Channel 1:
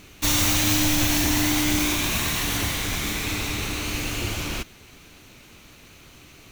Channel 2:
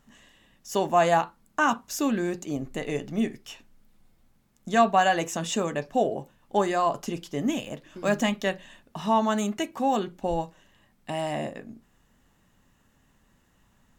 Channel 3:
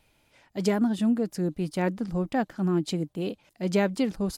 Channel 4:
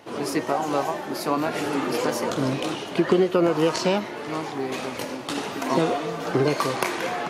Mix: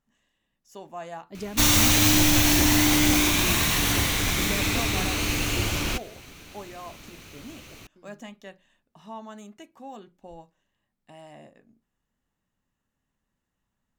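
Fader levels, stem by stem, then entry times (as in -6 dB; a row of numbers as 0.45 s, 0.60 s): +2.0 dB, -17.0 dB, -11.0 dB, mute; 1.35 s, 0.00 s, 0.75 s, mute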